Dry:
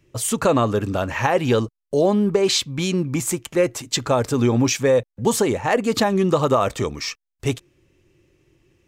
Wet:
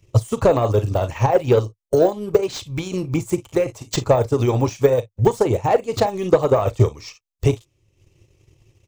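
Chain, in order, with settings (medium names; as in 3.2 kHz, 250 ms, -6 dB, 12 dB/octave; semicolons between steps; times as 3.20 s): peaking EQ 190 Hz -5 dB 0.61 oct; harmonic-percussive split percussive +8 dB; fifteen-band graphic EQ 100 Hz +10 dB, 250 Hz -8 dB, 1.6 kHz -10 dB, 6.3 kHz +4 dB; on a send: early reflections 38 ms -12.5 dB, 55 ms -17.5 dB; on the sum: de-esser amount 85%; transient shaper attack +5 dB, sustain -8 dB; trim -1.5 dB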